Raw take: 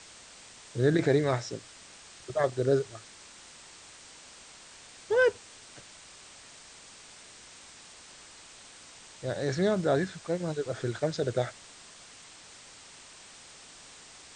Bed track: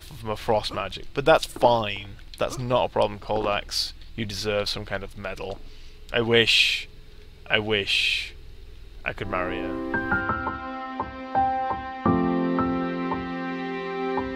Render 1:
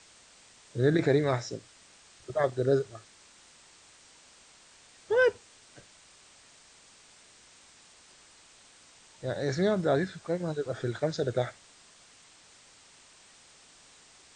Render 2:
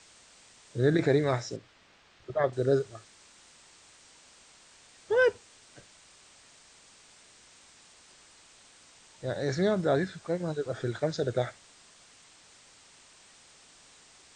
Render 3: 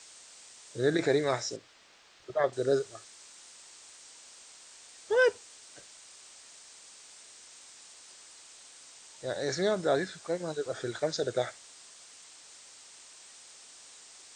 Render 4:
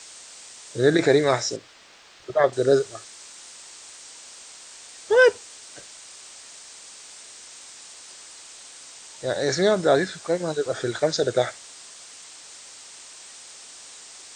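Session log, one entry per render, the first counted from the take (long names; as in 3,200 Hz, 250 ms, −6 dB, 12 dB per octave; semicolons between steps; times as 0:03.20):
noise reduction from a noise print 6 dB
0:01.56–0:02.53: low-pass filter 3,500 Hz
bass and treble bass −10 dB, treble +7 dB
level +8.5 dB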